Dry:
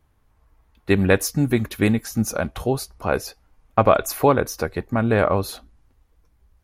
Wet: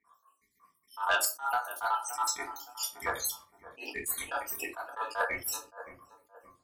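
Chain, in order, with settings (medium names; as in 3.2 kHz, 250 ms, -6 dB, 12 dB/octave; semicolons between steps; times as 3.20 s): random holes in the spectrogram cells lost 85%; ring modulator 1.1 kHz; high-pass 50 Hz; on a send: filtered feedback delay 569 ms, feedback 34%, low-pass 1 kHz, level -18 dB; on the sum: compression 2.5:1, threshold -30 dBFS, peak gain reduction 11 dB; tone controls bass -6 dB, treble +14 dB; simulated room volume 200 m³, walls furnished, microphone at 1.7 m; saturation -18 dBFS, distortion -19 dB; dynamic bell 190 Hz, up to -7 dB, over -55 dBFS, Q 1.1; attacks held to a fixed rise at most 240 dB/s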